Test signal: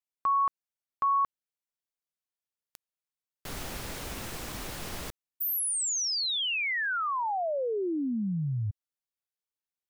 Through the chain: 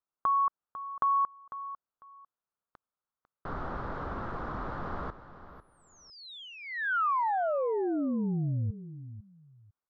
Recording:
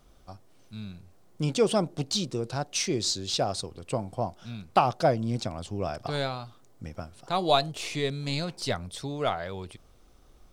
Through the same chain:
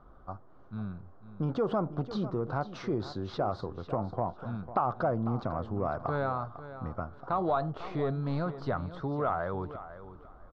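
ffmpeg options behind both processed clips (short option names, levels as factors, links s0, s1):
-filter_complex "[0:a]lowpass=f=3700:w=0.5412,lowpass=f=3700:w=1.3066,highshelf=f=1800:t=q:w=3:g=-12,acompressor=threshold=0.0282:ratio=3:attack=4:release=55:knee=6:detection=peak,asplit=2[s0][s1];[s1]aecho=0:1:499|998:0.211|0.0444[s2];[s0][s2]amix=inputs=2:normalize=0,volume=1.33"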